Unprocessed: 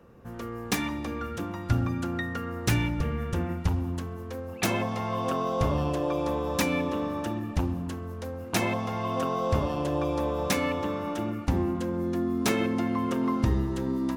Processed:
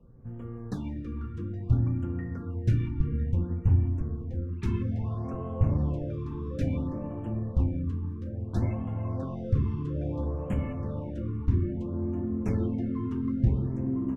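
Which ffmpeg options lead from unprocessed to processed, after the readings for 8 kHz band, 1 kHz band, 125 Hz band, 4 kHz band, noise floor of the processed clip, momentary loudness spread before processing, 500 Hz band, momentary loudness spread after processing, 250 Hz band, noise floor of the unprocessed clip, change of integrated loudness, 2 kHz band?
below −20 dB, −15.0 dB, +3.5 dB, below −20 dB, −38 dBFS, 8 LU, −8.5 dB, 9 LU, −3.0 dB, −38 dBFS, −1.5 dB, −18.0 dB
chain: -filter_complex "[0:a]lowshelf=frequency=470:gain=10,flanger=delay=7.6:depth=1.8:regen=-47:speed=0.44:shape=triangular,asplit=2[link_01][link_02];[link_02]adelay=1005,lowpass=frequency=1200:poles=1,volume=-7dB,asplit=2[link_03][link_04];[link_04]adelay=1005,lowpass=frequency=1200:poles=1,volume=0.55,asplit=2[link_05][link_06];[link_06]adelay=1005,lowpass=frequency=1200:poles=1,volume=0.55,asplit=2[link_07][link_08];[link_08]adelay=1005,lowpass=frequency=1200:poles=1,volume=0.55,asplit=2[link_09][link_10];[link_10]adelay=1005,lowpass=frequency=1200:poles=1,volume=0.55,asplit=2[link_11][link_12];[link_12]adelay=1005,lowpass=frequency=1200:poles=1,volume=0.55,asplit=2[link_13][link_14];[link_14]adelay=1005,lowpass=frequency=1200:poles=1,volume=0.55[link_15];[link_01][link_03][link_05][link_07][link_09][link_11][link_13][link_15]amix=inputs=8:normalize=0,flanger=delay=4.5:depth=4.9:regen=-59:speed=1.7:shape=triangular,aemphasis=mode=reproduction:type=bsi,afftfilt=real='re*(1-between(b*sr/1024,610*pow(4800/610,0.5+0.5*sin(2*PI*0.59*pts/sr))/1.41,610*pow(4800/610,0.5+0.5*sin(2*PI*0.59*pts/sr))*1.41))':imag='im*(1-between(b*sr/1024,610*pow(4800/610,0.5+0.5*sin(2*PI*0.59*pts/sr))/1.41,610*pow(4800/610,0.5+0.5*sin(2*PI*0.59*pts/sr))*1.41))':win_size=1024:overlap=0.75,volume=-8dB"

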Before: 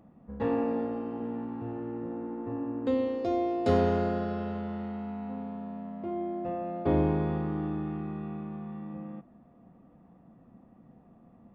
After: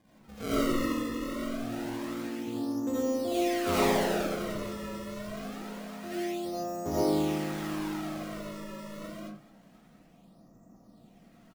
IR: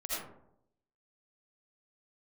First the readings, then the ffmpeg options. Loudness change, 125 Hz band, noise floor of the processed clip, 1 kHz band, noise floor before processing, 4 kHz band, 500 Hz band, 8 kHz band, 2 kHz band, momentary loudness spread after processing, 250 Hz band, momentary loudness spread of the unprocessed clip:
−0.5 dB, −6.0 dB, −59 dBFS, 0.0 dB, −58 dBFS, +12.5 dB, −1.0 dB, can't be measured, +7.5 dB, 14 LU, −0.5 dB, 13 LU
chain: -filter_complex "[0:a]acrusher=samples=32:mix=1:aa=0.000001:lfo=1:lforange=51.2:lforate=0.26,asplit=2[link_01][link_02];[link_02]adelay=215.7,volume=-18dB,highshelf=frequency=4000:gain=-4.85[link_03];[link_01][link_03]amix=inputs=2:normalize=0[link_04];[1:a]atrim=start_sample=2205,afade=type=out:start_time=0.26:duration=0.01,atrim=end_sample=11907[link_05];[link_04][link_05]afir=irnorm=-1:irlink=0,volume=-3.5dB"

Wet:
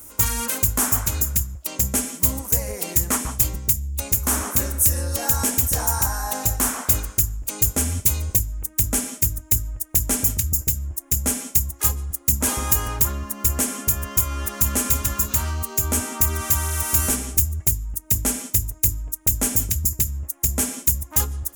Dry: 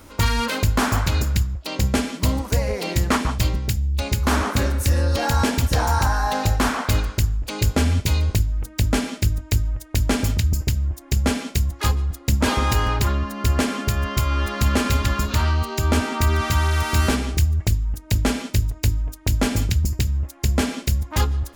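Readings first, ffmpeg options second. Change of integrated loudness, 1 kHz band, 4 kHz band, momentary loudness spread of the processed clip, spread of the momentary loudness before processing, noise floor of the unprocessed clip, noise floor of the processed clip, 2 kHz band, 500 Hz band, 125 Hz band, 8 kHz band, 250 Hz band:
+1.5 dB, −6.5 dB, −5.5 dB, 4 LU, 4 LU, −43 dBFS, −46 dBFS, −6.5 dB, −6.5 dB, −6.5 dB, +10.5 dB, −6.5 dB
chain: -af "aexciter=amount=11.1:drive=3.1:freq=6300,volume=-6.5dB"

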